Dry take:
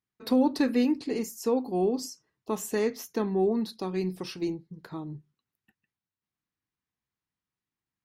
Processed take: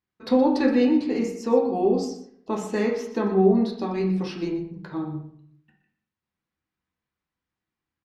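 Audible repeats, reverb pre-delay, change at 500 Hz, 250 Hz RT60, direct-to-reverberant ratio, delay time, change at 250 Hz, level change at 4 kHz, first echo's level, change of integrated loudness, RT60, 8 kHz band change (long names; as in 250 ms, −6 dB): 1, 5 ms, +6.0 dB, 0.75 s, −0.5 dB, 121 ms, +5.5 dB, +1.0 dB, −13.0 dB, +5.0 dB, 0.65 s, can't be measured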